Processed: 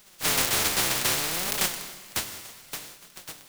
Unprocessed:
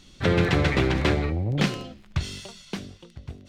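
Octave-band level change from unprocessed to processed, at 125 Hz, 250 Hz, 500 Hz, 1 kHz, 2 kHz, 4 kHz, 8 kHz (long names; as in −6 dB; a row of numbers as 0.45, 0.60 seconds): −17.0, −13.0, −9.5, −0.5, −1.0, +5.5, +17.5 decibels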